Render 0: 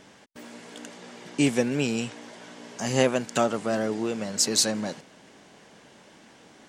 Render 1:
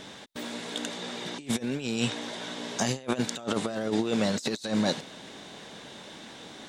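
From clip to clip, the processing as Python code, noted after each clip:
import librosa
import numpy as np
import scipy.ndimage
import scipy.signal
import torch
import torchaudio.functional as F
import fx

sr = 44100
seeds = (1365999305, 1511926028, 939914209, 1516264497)

y = fx.peak_eq(x, sr, hz=3700.0, db=12.5, octaves=0.24)
y = fx.over_compress(y, sr, threshold_db=-30.0, ratio=-0.5)
y = y * 10.0 ** (1.5 / 20.0)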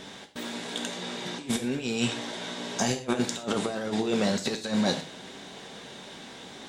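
y = fx.rev_gated(x, sr, seeds[0], gate_ms=150, shape='falling', drr_db=5.0)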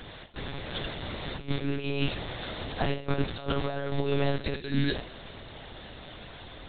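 y = fx.spec_box(x, sr, start_s=4.61, length_s=0.34, low_hz=520.0, high_hz=1500.0, gain_db=-28)
y = fx.lpc_monotone(y, sr, seeds[1], pitch_hz=140.0, order=10)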